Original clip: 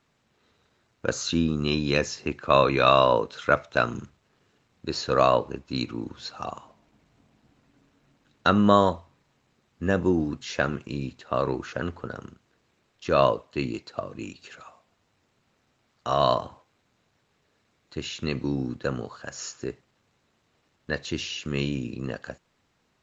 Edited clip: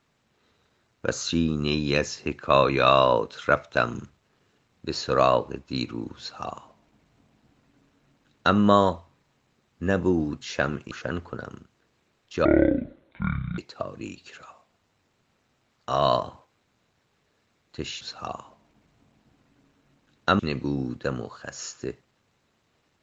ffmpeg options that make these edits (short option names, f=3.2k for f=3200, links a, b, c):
-filter_complex "[0:a]asplit=6[a][b][c][d][e][f];[a]atrim=end=10.912[g];[b]atrim=start=11.618:end=13.164[h];[c]atrim=start=13.16:end=13.76,asetpts=PTS-STARTPTS,asetrate=23373,aresample=44100[i];[d]atrim=start=13.756:end=18.192[j];[e]atrim=start=6.188:end=8.572[k];[f]atrim=start=18.188[l];[g][h]acrossfade=d=0.004:c1=hsin:c2=hsin[m];[m][i]acrossfade=d=0.004:c1=hsin:c2=hsin[n];[n][j]acrossfade=d=0.004:c1=hsin:c2=hsin[o];[o][k]acrossfade=d=0.004:c1=hsin:c2=hsin[p];[p][l]acrossfade=d=0.004:c1=hsin:c2=hsin"